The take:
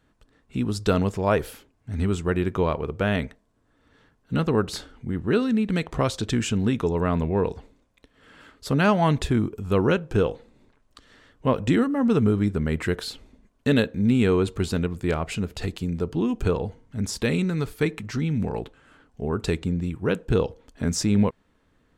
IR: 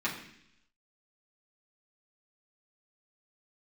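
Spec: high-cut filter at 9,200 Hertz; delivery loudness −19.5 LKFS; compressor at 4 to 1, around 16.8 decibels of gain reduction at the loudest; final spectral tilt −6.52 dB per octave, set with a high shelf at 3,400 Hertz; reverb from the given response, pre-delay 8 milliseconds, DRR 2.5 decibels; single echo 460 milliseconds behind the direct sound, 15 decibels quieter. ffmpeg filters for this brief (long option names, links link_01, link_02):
-filter_complex "[0:a]lowpass=9200,highshelf=frequency=3400:gain=-4.5,acompressor=threshold=-37dB:ratio=4,aecho=1:1:460:0.178,asplit=2[link_01][link_02];[1:a]atrim=start_sample=2205,adelay=8[link_03];[link_02][link_03]afir=irnorm=-1:irlink=0,volume=-10dB[link_04];[link_01][link_04]amix=inputs=2:normalize=0,volume=17.5dB"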